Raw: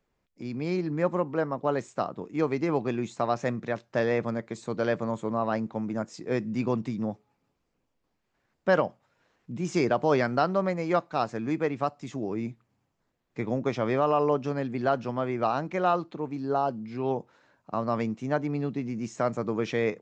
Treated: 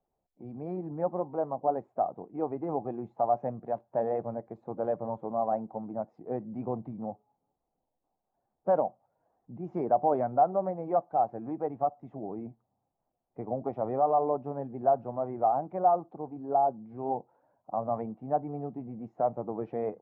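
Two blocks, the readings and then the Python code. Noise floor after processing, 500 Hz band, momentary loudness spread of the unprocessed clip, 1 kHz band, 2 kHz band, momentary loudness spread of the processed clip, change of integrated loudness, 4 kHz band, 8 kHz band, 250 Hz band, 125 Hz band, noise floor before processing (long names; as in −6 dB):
−83 dBFS, −2.5 dB, 9 LU, +1.5 dB, below −20 dB, 14 LU, −2.5 dB, below −30 dB, below −30 dB, −7.5 dB, −8.5 dB, −78 dBFS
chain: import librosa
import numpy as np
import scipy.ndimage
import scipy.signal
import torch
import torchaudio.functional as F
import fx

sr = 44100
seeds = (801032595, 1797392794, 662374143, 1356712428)

y = fx.spec_quant(x, sr, step_db=15)
y = fx.lowpass_res(y, sr, hz=760.0, q=4.9)
y = F.gain(torch.from_numpy(y), -8.5).numpy()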